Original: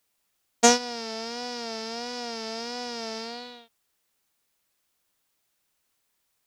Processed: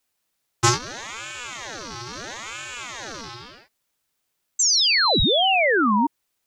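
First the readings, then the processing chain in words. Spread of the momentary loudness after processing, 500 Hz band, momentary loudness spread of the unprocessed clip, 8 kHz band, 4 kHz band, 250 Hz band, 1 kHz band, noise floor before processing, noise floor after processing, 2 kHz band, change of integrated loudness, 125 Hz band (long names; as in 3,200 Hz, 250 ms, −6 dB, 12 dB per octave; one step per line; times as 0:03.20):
18 LU, +4.0 dB, 15 LU, +5.5 dB, +11.5 dB, +7.0 dB, +7.5 dB, −75 dBFS, −76 dBFS, +12.0 dB, +9.5 dB, can't be measured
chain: sound drawn into the spectrogram fall, 0:04.59–0:06.07, 310–7,100 Hz −18 dBFS
ring modulator whose carrier an LFO sweeps 1,300 Hz, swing 55%, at 0.75 Hz
level +2.5 dB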